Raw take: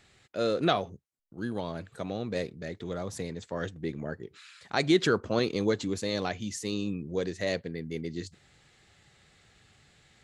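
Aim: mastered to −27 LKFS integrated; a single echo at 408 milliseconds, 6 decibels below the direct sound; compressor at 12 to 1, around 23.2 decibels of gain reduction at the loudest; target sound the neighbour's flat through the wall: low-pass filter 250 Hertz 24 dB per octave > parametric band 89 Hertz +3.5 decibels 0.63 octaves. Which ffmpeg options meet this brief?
ffmpeg -i in.wav -af "acompressor=threshold=-42dB:ratio=12,lowpass=frequency=250:width=0.5412,lowpass=frequency=250:width=1.3066,equalizer=frequency=89:width_type=o:width=0.63:gain=3.5,aecho=1:1:408:0.501,volume=24.5dB" out.wav

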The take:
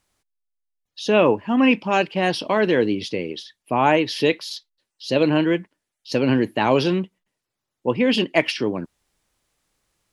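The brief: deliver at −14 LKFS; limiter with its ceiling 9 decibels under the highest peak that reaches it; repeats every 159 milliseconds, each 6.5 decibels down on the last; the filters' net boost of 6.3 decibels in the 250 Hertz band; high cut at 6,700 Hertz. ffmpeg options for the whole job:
ffmpeg -i in.wav -af "lowpass=6700,equalizer=frequency=250:width_type=o:gain=7.5,alimiter=limit=-10dB:level=0:latency=1,aecho=1:1:159|318|477|636|795|954:0.473|0.222|0.105|0.0491|0.0231|0.0109,volume=6dB" out.wav

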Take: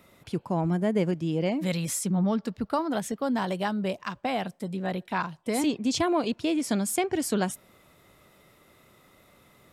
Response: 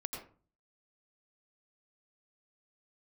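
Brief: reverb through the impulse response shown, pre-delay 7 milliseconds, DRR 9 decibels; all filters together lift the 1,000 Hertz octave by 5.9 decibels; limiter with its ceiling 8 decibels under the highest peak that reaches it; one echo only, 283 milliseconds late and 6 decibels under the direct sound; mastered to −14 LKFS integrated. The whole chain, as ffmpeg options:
-filter_complex "[0:a]equalizer=frequency=1000:width_type=o:gain=7.5,alimiter=limit=-18.5dB:level=0:latency=1,aecho=1:1:283:0.501,asplit=2[link_01][link_02];[1:a]atrim=start_sample=2205,adelay=7[link_03];[link_02][link_03]afir=irnorm=-1:irlink=0,volume=-9dB[link_04];[link_01][link_04]amix=inputs=2:normalize=0,volume=13.5dB"

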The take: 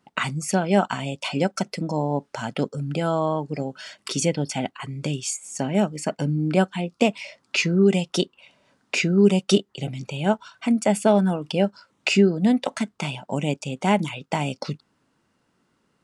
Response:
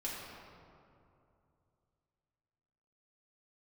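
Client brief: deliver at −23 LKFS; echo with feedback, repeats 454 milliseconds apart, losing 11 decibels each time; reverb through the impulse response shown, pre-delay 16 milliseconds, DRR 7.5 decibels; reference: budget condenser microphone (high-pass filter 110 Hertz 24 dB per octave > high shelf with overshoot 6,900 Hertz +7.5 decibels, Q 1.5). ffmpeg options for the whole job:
-filter_complex "[0:a]aecho=1:1:454|908|1362:0.282|0.0789|0.0221,asplit=2[link_01][link_02];[1:a]atrim=start_sample=2205,adelay=16[link_03];[link_02][link_03]afir=irnorm=-1:irlink=0,volume=-9.5dB[link_04];[link_01][link_04]amix=inputs=2:normalize=0,highpass=frequency=110:width=0.5412,highpass=frequency=110:width=1.3066,highshelf=frequency=6900:width_type=q:width=1.5:gain=7.5,volume=-0.5dB"

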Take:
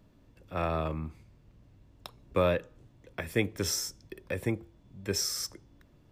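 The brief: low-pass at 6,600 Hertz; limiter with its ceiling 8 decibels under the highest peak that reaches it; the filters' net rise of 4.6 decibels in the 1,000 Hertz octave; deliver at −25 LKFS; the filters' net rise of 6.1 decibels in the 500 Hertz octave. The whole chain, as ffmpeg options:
ffmpeg -i in.wav -af "lowpass=6600,equalizer=frequency=500:width_type=o:gain=6,equalizer=frequency=1000:width_type=o:gain=4.5,volume=7.5dB,alimiter=limit=-10dB:level=0:latency=1" out.wav

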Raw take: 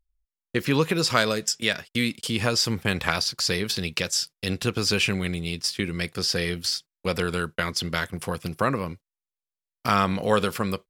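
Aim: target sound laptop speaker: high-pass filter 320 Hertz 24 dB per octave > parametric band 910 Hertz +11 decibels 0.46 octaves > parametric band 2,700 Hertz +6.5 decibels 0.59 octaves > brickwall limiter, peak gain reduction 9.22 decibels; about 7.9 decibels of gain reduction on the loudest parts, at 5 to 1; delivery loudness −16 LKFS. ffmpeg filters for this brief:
ffmpeg -i in.wav -af "acompressor=threshold=-25dB:ratio=5,highpass=frequency=320:width=0.5412,highpass=frequency=320:width=1.3066,equalizer=frequency=910:width_type=o:width=0.46:gain=11,equalizer=frequency=2700:width_type=o:width=0.59:gain=6.5,volume=14dB,alimiter=limit=-2dB:level=0:latency=1" out.wav

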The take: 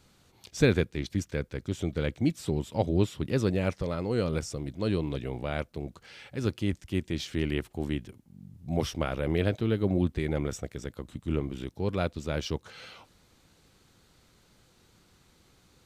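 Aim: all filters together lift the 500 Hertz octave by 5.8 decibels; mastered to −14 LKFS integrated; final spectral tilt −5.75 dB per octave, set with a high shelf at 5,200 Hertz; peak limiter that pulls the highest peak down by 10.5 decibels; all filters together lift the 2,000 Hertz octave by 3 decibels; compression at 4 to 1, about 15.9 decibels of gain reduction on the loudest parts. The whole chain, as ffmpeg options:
ffmpeg -i in.wav -af "equalizer=frequency=500:width_type=o:gain=7,equalizer=frequency=2000:width_type=o:gain=4.5,highshelf=frequency=5200:gain=-7,acompressor=threshold=-33dB:ratio=4,volume=28.5dB,alimiter=limit=-1dB:level=0:latency=1" out.wav

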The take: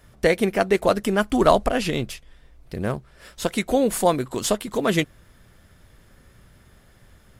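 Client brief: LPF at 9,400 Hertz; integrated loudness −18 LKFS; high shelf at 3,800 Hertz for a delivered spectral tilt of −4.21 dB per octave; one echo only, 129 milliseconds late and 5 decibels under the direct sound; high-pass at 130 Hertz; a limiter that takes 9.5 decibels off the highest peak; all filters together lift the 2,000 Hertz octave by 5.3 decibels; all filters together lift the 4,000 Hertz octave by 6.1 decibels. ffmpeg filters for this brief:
ffmpeg -i in.wav -af "highpass=130,lowpass=9400,equalizer=frequency=2000:width_type=o:gain=5.5,highshelf=frequency=3800:gain=-4.5,equalizer=frequency=4000:width_type=o:gain=8.5,alimiter=limit=-8.5dB:level=0:latency=1,aecho=1:1:129:0.562,volume=4dB" out.wav

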